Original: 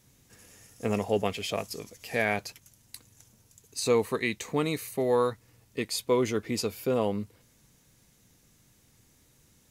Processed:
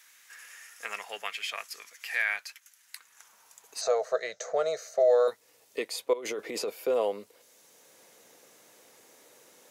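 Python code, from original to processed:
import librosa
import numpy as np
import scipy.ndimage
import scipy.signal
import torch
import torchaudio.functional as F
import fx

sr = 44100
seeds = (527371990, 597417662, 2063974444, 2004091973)

y = fx.curve_eq(x, sr, hz=(170.0, 270.0, 640.0, 970.0, 1400.0, 2500.0, 6300.0, 9700.0), db=(0, -23, 14, -11, 8, -12, 7, -19), at=(3.81, 5.28))
y = fx.over_compress(y, sr, threshold_db=-32.0, ratio=-1.0, at=(6.13, 6.7))
y = fx.filter_sweep_highpass(y, sr, from_hz=1600.0, to_hz=510.0, start_s=2.9, end_s=4.2, q=1.9)
y = fx.band_squash(y, sr, depth_pct=40)
y = y * 10.0 ** (-2.5 / 20.0)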